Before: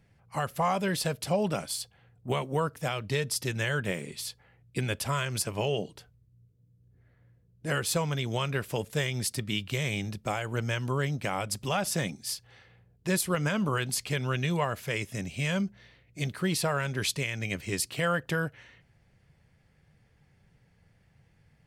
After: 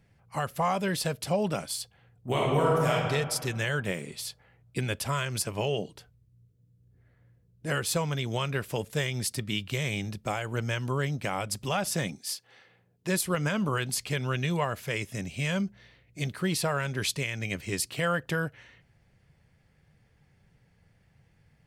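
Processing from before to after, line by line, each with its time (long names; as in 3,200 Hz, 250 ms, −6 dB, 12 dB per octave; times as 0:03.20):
0:02.29–0:02.92: thrown reverb, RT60 1.8 s, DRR −4.5 dB
0:12.18–0:13.24: high-pass filter 340 Hz → 120 Hz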